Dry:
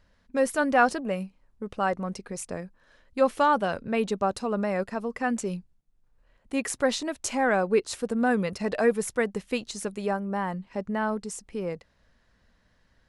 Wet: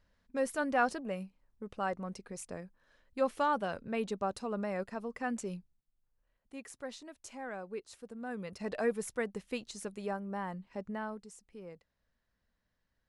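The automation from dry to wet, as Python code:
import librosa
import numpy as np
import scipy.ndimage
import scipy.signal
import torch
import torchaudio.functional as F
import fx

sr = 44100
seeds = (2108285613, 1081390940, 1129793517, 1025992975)

y = fx.gain(x, sr, db=fx.line((5.54, -8.5), (6.63, -18.5), (8.22, -18.5), (8.68, -9.0), (10.89, -9.0), (11.3, -16.5)))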